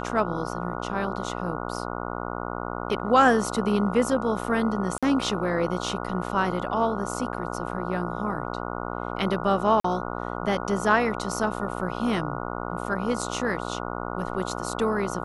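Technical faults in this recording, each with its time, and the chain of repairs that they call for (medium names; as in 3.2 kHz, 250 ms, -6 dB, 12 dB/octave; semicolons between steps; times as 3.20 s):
buzz 60 Hz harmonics 24 -32 dBFS
4.98–5.03 s: dropout 46 ms
9.80–9.84 s: dropout 44 ms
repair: de-hum 60 Hz, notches 24; interpolate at 4.98 s, 46 ms; interpolate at 9.80 s, 44 ms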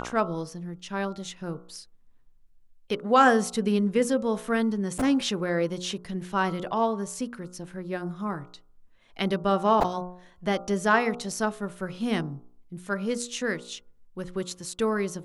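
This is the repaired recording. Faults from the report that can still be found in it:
nothing left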